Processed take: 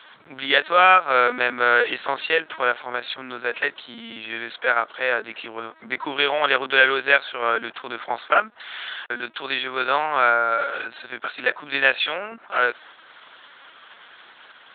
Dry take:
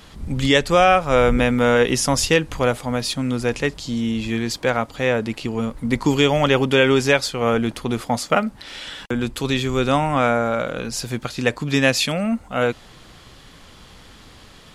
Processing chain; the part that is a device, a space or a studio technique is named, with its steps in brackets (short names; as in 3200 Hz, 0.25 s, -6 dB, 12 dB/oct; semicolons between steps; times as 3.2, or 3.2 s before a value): talking toy (LPC vocoder at 8 kHz pitch kept; HPF 650 Hz 12 dB/oct; bell 1500 Hz +8.5 dB 0.47 oct)